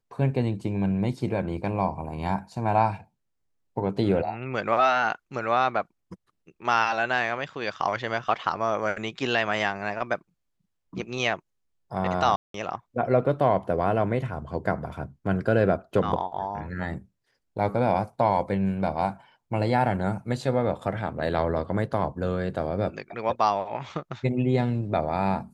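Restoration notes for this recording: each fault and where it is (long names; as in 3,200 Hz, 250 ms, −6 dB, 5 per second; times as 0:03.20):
0:12.36–0:12.54: drop-out 183 ms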